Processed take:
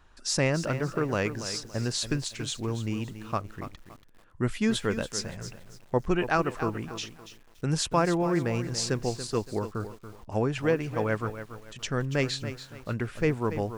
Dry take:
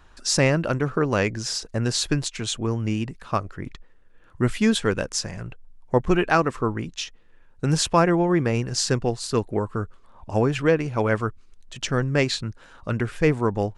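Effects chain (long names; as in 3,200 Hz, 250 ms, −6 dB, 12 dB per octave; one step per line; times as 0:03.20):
feedback echo at a low word length 283 ms, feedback 35%, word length 7 bits, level −11 dB
level −6 dB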